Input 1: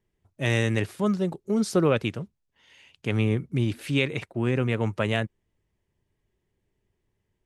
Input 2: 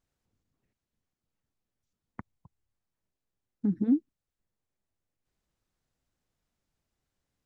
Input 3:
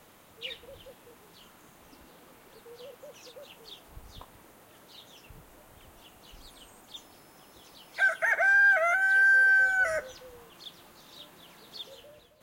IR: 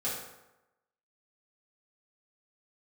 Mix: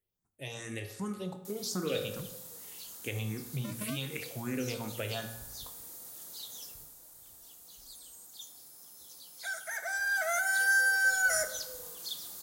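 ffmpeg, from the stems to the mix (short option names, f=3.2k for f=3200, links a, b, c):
-filter_complex "[0:a]aemphasis=mode=production:type=75fm,asplit=2[a][b];[b]afreqshift=2.6[c];[a][c]amix=inputs=2:normalize=1,volume=-12.5dB,asplit=3[d][e][f];[e]volume=-12dB[g];[1:a]acrusher=samples=37:mix=1:aa=0.000001:lfo=1:lforange=37:lforate=0.61,volume=-15dB[h];[2:a]aexciter=amount=9.8:drive=2.7:freq=3.9k,adelay=1450,volume=-4.5dB,afade=t=out:st=6.64:d=0.32:silence=0.446684,afade=t=in:st=9.82:d=0.79:silence=0.375837,asplit=2[i][j];[j]volume=-12dB[k];[f]apad=whole_len=612099[l];[i][l]sidechaincompress=threshold=-41dB:ratio=8:attack=35:release=213[m];[d][h]amix=inputs=2:normalize=0,acompressor=threshold=-41dB:ratio=6,volume=0dB[n];[3:a]atrim=start_sample=2205[o];[g][k]amix=inputs=2:normalize=0[p];[p][o]afir=irnorm=-1:irlink=0[q];[m][n][q]amix=inputs=3:normalize=0,dynaudnorm=f=330:g=5:m=6dB"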